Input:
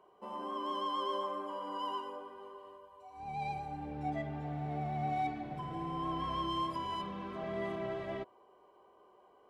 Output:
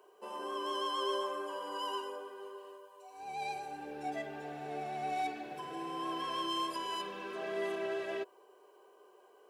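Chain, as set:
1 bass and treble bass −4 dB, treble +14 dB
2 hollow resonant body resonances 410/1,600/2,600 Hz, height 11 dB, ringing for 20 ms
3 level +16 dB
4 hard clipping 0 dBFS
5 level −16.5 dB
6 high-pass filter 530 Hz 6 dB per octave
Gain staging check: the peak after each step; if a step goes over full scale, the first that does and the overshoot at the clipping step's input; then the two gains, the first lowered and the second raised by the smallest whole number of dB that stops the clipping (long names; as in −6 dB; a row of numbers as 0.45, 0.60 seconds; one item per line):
−25.0, −21.0, −5.0, −5.0, −21.5, −24.0 dBFS
no step passes full scale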